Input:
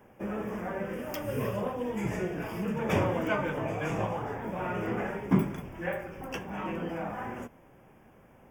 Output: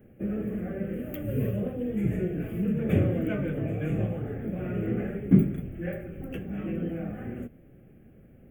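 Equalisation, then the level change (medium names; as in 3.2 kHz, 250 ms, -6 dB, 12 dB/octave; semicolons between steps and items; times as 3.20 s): tilt shelf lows +7.5 dB, about 730 Hz; treble shelf 12 kHz +11 dB; static phaser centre 2.3 kHz, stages 4; 0.0 dB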